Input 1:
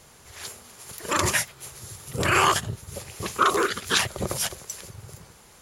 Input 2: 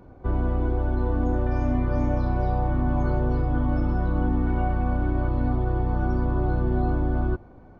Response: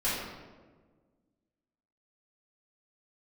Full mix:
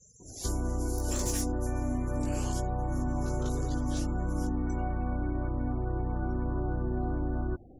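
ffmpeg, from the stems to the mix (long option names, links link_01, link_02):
-filter_complex "[0:a]firequalizer=gain_entry='entry(450,0);entry(720,-2);entry(1200,-15);entry(5900,9);entry(9800,4)':delay=0.05:min_phase=1,asoftclip=type=tanh:threshold=-19.5dB,flanger=delay=17:depth=2.8:speed=0.76,volume=-0.5dB,afade=type=out:start_time=1.13:duration=0.75:silence=0.354813,afade=type=out:start_time=3.71:duration=0.79:silence=0.375837[link_01];[1:a]equalizer=frequency=300:width=2.4:gain=3,adelay=200,volume=-4dB[link_02];[link_01][link_02]amix=inputs=2:normalize=0,afftfilt=real='re*gte(hypot(re,im),0.00447)':imag='im*gte(hypot(re,im),0.00447)':win_size=1024:overlap=0.75,acompressor=threshold=-30dB:ratio=2"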